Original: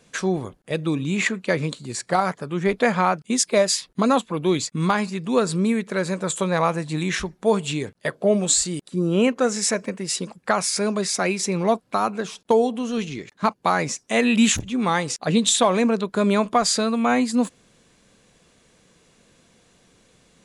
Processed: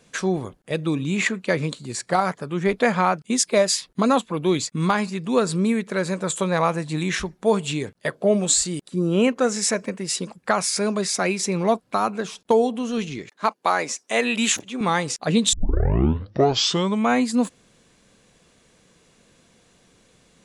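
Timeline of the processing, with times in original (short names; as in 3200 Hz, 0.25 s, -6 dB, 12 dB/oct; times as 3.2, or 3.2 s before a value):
13.29–14.81 HPF 340 Hz
15.53 tape start 1.56 s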